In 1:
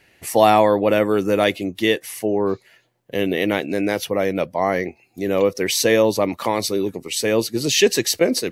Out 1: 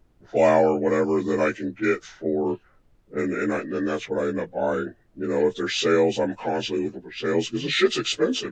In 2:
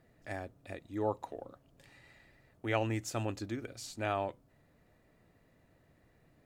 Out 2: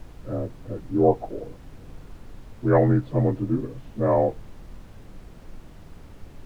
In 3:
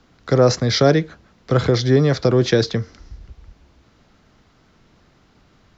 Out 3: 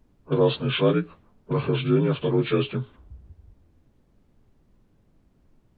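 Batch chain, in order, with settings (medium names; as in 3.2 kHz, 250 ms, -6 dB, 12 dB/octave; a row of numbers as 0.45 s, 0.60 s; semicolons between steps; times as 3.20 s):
frequency axis rescaled in octaves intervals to 85%; level-controlled noise filter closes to 380 Hz, open at -17 dBFS; added noise brown -56 dBFS; normalise loudness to -24 LUFS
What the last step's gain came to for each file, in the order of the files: -3.0 dB, +16.0 dB, -5.0 dB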